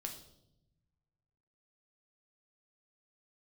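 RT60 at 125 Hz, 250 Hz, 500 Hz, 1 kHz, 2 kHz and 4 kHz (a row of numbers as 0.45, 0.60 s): 2.1, 1.4, 1.0, 0.65, 0.55, 0.70 s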